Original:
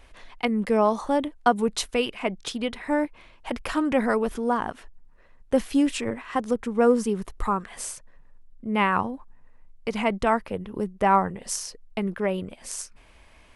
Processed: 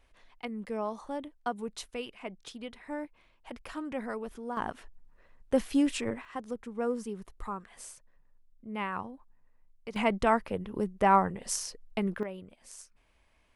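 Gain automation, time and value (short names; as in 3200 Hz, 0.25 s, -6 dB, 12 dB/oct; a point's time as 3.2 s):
-13.5 dB
from 4.57 s -4.5 dB
from 6.25 s -12.5 dB
from 9.96 s -3 dB
from 12.23 s -14.5 dB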